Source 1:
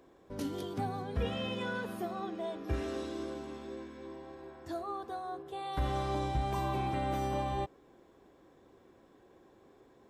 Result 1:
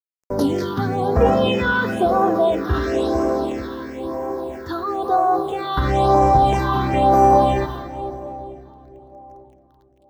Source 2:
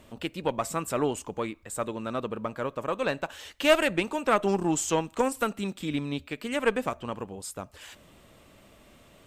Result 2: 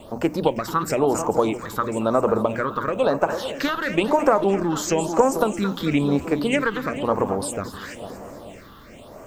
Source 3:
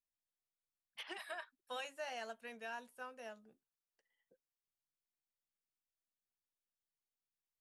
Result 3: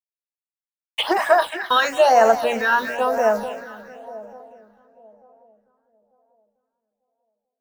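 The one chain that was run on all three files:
noise gate with hold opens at −48 dBFS
parametric band 800 Hz +10 dB 2.3 octaves
mains-hum notches 60/120/180/240/300 Hz
bit reduction 11 bits
downward compressor, threshold −22 dBFS
echo with a time of its own for lows and highs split 810 Hz, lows 446 ms, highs 220 ms, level −11.5 dB
all-pass phaser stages 6, 1 Hz, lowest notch 620–3,500 Hz
transient designer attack 0 dB, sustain +4 dB
feedback echo with a swinging delay time 263 ms, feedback 52%, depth 205 cents, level −23.5 dB
normalise the peak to −3 dBFS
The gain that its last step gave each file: +13.5, +8.0, +24.0 decibels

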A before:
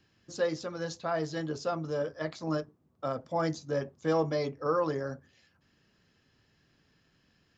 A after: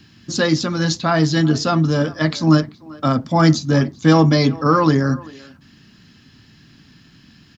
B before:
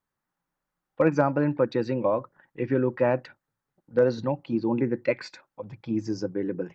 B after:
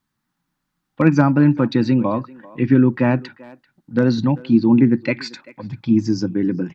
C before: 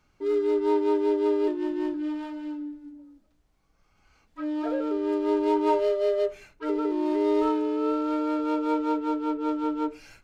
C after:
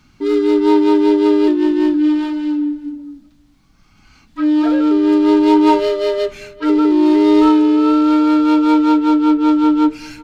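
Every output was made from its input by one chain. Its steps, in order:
octave-band graphic EQ 125/250/500/4,000 Hz +4/+9/−11/+5 dB
far-end echo of a speakerphone 390 ms, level −20 dB
normalise the peak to −1.5 dBFS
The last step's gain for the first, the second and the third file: +16.5, +7.0, +12.5 decibels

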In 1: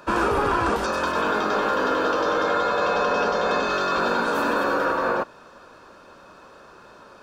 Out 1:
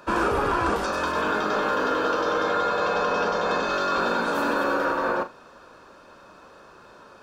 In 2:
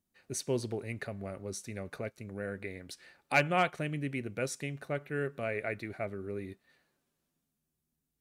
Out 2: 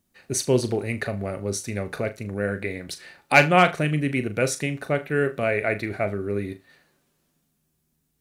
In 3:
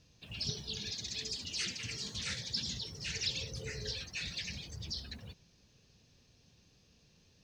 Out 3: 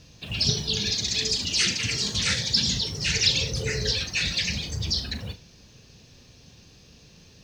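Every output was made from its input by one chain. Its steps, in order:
flutter between parallel walls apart 6.7 metres, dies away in 0.21 s
loudness normalisation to −24 LKFS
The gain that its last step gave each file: −2.0, +11.0, +14.0 decibels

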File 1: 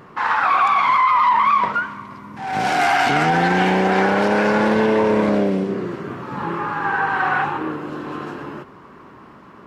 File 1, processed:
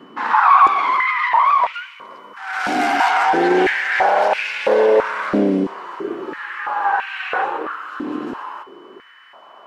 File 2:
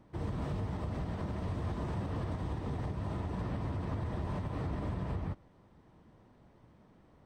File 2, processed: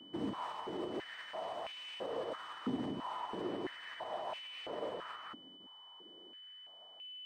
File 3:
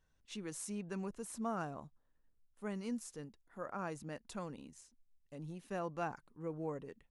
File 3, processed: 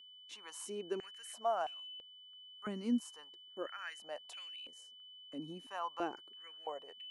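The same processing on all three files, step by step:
noise gate with hold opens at −53 dBFS
steady tone 3,000 Hz −52 dBFS
high-pass on a step sequencer 3 Hz 260–2,500 Hz
level −2.5 dB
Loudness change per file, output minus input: +0.5, −5.0, +1.5 LU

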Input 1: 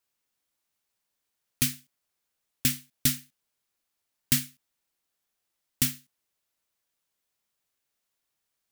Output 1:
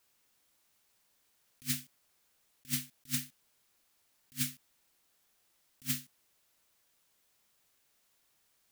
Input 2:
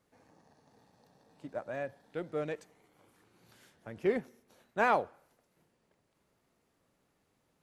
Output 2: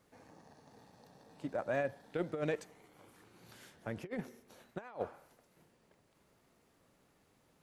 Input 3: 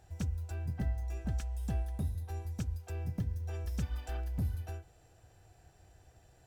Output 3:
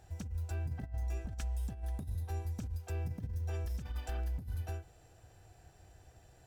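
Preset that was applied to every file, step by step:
compressor whose output falls as the input rises −36 dBFS, ratio −0.5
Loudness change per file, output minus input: −9.5, −5.5, −2.0 LU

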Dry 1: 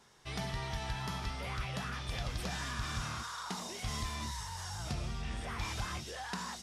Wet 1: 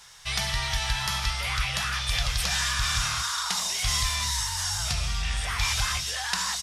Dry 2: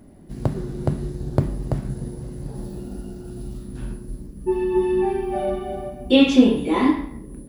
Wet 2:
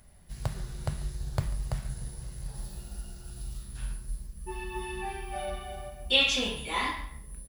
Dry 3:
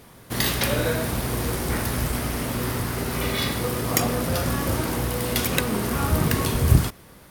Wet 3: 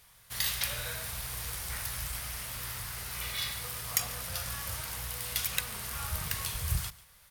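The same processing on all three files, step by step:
guitar amp tone stack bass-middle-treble 10-0-10
single-tap delay 142 ms −20 dB
normalise the peak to −9 dBFS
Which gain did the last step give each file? +18.0, +3.5, −4.5 decibels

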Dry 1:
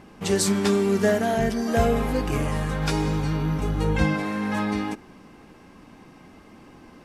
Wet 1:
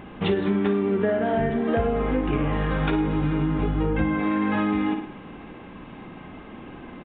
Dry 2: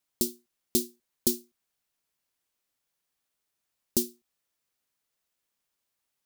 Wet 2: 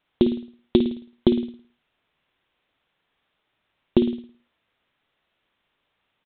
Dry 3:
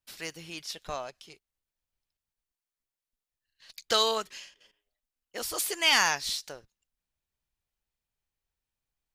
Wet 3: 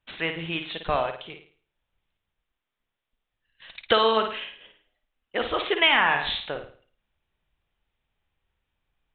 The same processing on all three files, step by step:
treble cut that deepens with the level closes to 2,500 Hz, closed at −19 dBFS
flutter between parallel walls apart 9.3 metres, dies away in 0.44 s
downsampling to 8,000 Hz
dynamic equaliser 320 Hz, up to +6 dB, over −38 dBFS, Q 2.4
downward compressor 5 to 1, threshold −27 dBFS
loudness normalisation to −24 LKFS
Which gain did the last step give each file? +6.5, +14.0, +11.0 decibels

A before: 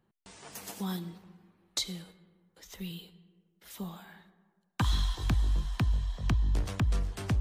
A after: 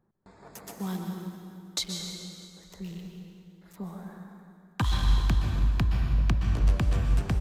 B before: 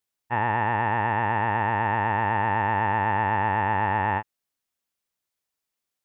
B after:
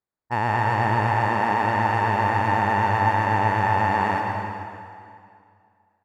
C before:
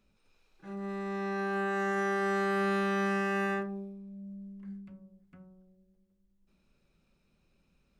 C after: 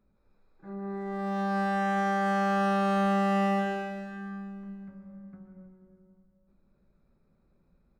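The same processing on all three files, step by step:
adaptive Wiener filter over 15 samples
on a send: repeating echo 325 ms, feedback 47%, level −20.5 dB
on the sum: dense smooth reverb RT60 2.2 s, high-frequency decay 0.85×, pre-delay 110 ms, DRR 2 dB
level +1.5 dB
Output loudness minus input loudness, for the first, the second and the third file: +4.5, +2.5, +3.0 LU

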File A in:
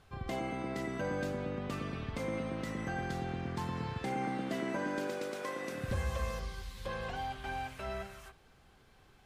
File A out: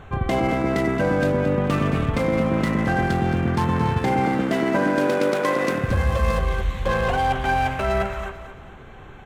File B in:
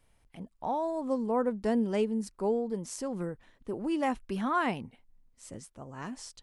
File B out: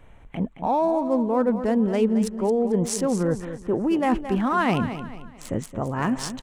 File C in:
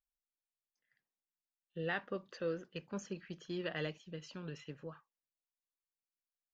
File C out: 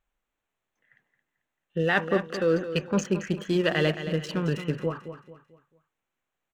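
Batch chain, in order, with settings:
adaptive Wiener filter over 9 samples
reversed playback
downward compressor, threshold −38 dBFS
reversed playback
repeating echo 221 ms, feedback 37%, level −11 dB
normalise the peak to −9 dBFS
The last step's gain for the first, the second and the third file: +20.5, +18.5, +19.0 decibels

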